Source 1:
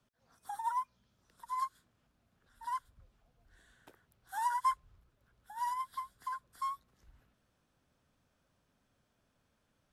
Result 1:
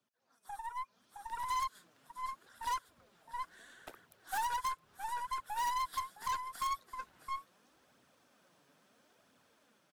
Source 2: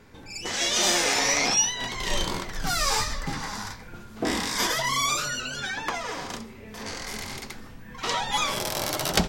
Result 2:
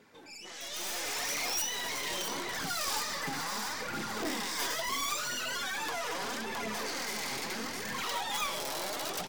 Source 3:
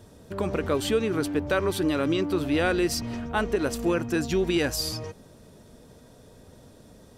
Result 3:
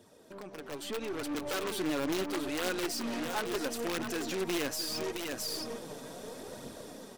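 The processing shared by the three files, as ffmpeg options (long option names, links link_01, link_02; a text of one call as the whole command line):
ffmpeg -i in.wav -filter_complex "[0:a]aeval=exprs='(mod(5.96*val(0)+1,2)-1)/5.96':channel_layout=same,highpass=250,asplit=2[link_01][link_02];[link_02]aecho=0:1:665:0.211[link_03];[link_01][link_03]amix=inputs=2:normalize=0,flanger=delay=0.2:depth=7.3:regen=35:speed=0.75:shape=triangular,volume=23.5dB,asoftclip=hard,volume=-23.5dB,acompressor=threshold=-41dB:ratio=10,alimiter=level_in=14.5dB:limit=-24dB:level=0:latency=1:release=14,volume=-14.5dB,dynaudnorm=framelen=220:gausssize=9:maxgain=15dB,aeval=exprs='0.0668*(cos(1*acos(clip(val(0)/0.0668,-1,1)))-cos(1*PI/2))+0.00841*(cos(2*acos(clip(val(0)/0.0668,-1,1)))-cos(2*PI/2))+0.015*(cos(4*acos(clip(val(0)/0.0668,-1,1)))-cos(4*PI/2))+0.00596*(cos(5*acos(clip(val(0)/0.0668,-1,1)))-cos(5*PI/2))+0.015*(cos(6*acos(clip(val(0)/0.0668,-1,1)))-cos(6*PI/2))':channel_layout=same,volume=-4.5dB" out.wav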